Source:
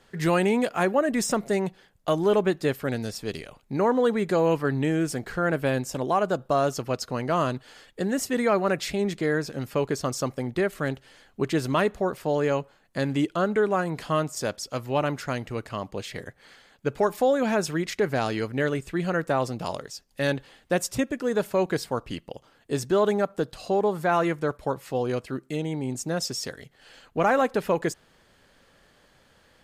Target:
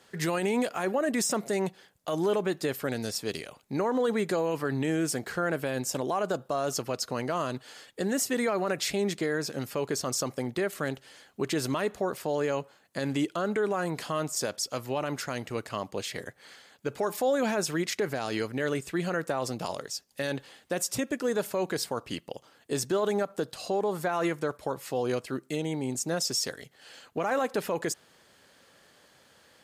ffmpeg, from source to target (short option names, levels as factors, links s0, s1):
-af "highpass=85,bass=f=250:g=-4,treble=f=4000:g=5,alimiter=limit=0.112:level=0:latency=1:release=42"